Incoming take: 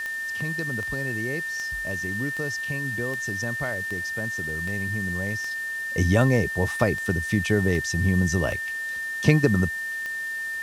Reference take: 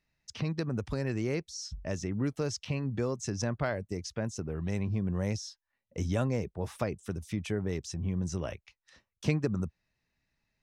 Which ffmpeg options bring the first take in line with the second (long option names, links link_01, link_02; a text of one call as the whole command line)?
ffmpeg -i in.wav -af "adeclick=threshold=4,bandreject=frequency=1800:width=30,afwtdn=0.0056,asetnsamples=nb_out_samples=441:pad=0,asendcmd='5.51 volume volume -10dB',volume=0dB" out.wav